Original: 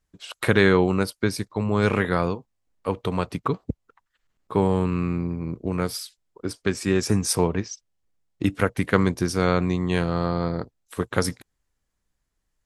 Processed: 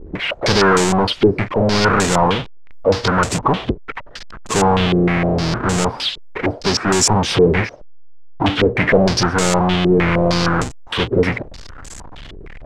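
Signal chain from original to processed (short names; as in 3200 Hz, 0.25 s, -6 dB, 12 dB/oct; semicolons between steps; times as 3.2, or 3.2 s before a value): half-waves squared off; power-law curve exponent 0.35; stepped low-pass 6.5 Hz 400–7500 Hz; gain -7.5 dB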